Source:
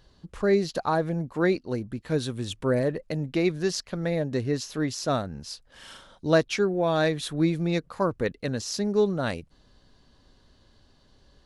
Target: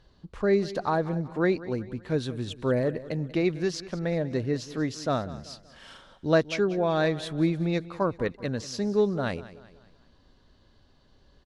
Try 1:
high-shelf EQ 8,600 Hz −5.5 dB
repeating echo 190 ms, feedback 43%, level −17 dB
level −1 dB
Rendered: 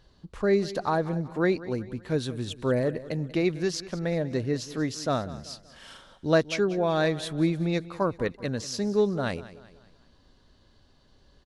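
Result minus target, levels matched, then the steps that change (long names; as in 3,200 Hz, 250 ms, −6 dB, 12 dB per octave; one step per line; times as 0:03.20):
8,000 Hz band +3.5 dB
change: high-shelf EQ 8,600 Hz −16.5 dB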